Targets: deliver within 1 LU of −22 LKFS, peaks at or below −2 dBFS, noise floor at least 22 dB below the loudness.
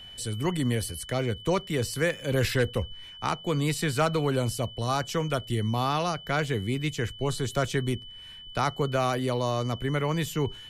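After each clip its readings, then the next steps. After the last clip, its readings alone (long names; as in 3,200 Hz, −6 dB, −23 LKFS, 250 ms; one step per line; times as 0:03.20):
interfering tone 3,000 Hz; level of the tone −43 dBFS; integrated loudness −28.5 LKFS; sample peak −11.0 dBFS; target loudness −22.0 LKFS
→ notch filter 3,000 Hz, Q 30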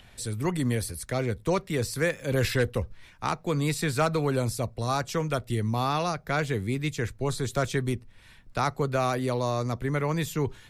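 interfering tone none found; integrated loudness −28.5 LKFS; sample peak −11.0 dBFS; target loudness −22.0 LKFS
→ level +6.5 dB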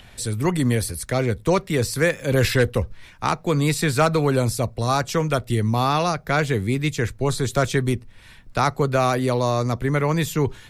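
integrated loudness −22.0 LKFS; sample peak −4.5 dBFS; background noise floor −47 dBFS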